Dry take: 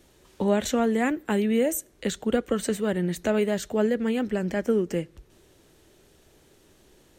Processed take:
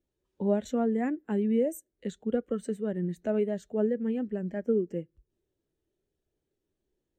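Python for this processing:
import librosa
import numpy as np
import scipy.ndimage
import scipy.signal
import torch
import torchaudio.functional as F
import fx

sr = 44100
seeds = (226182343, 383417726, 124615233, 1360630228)

y = fx.spectral_expand(x, sr, expansion=1.5)
y = F.gain(torch.from_numpy(y), -3.5).numpy()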